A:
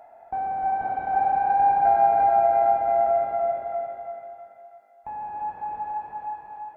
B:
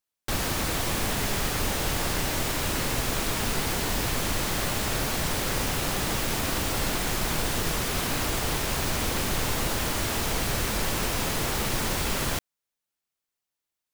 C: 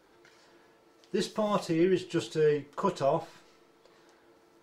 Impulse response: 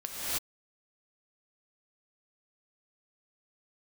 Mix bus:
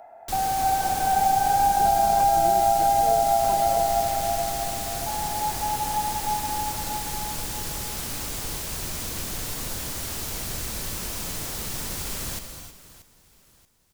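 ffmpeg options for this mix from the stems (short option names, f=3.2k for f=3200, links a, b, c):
-filter_complex "[0:a]volume=2.5dB,asplit=2[a][b];[b]volume=-4.5dB[c];[1:a]bass=f=250:g=3,treble=f=4k:g=9,volume=-11dB,asplit=3[d][e][f];[e]volume=-12.5dB[g];[f]volume=-15.5dB[h];[2:a]adelay=650,volume=-9dB[i];[3:a]atrim=start_sample=2205[j];[g][j]afir=irnorm=-1:irlink=0[k];[c][h]amix=inputs=2:normalize=0,aecho=0:1:631|1262|1893|2524|3155:1|0.36|0.13|0.0467|0.0168[l];[a][d][i][k][l]amix=inputs=5:normalize=0,acrossover=split=300|3000[m][n][o];[n]acompressor=threshold=-18dB:ratio=6[p];[m][p][o]amix=inputs=3:normalize=0"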